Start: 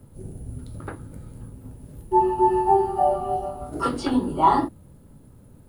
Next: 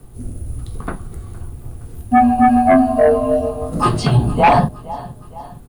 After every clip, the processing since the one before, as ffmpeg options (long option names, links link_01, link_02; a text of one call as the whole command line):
ffmpeg -i in.wav -af "aecho=1:1:464|928|1392|1856:0.0944|0.0472|0.0236|0.0118,afreqshift=-130,aeval=exprs='0.531*sin(PI/2*2*val(0)/0.531)':channel_layout=same" out.wav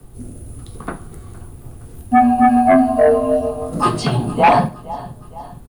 ffmpeg -i in.wav -filter_complex "[0:a]aecho=1:1:70|140|210:0.106|0.0381|0.0137,acrossover=split=140|1000|2000[link_01][link_02][link_03][link_04];[link_01]acompressor=threshold=-33dB:ratio=6[link_05];[link_05][link_02][link_03][link_04]amix=inputs=4:normalize=0" out.wav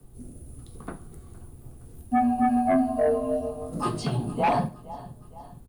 ffmpeg -i in.wav -af "equalizer=frequency=1700:width=0.44:gain=-5,bandreject=frequency=50:width_type=h:width=6,bandreject=frequency=100:width_type=h:width=6,volume=-8.5dB" out.wav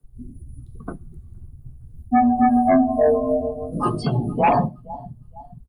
ffmpeg -i in.wav -af "afftdn=noise_reduction=22:noise_floor=-35,volume=6dB" out.wav